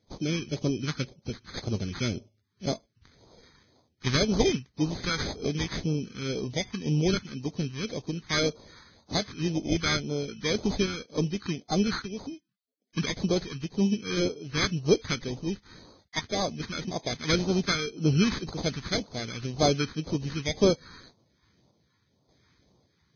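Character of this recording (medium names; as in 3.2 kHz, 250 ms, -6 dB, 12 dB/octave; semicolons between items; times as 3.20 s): aliases and images of a low sample rate 2.8 kHz, jitter 0%; random-step tremolo; phasing stages 2, 1.9 Hz, lowest notch 590–1700 Hz; Vorbis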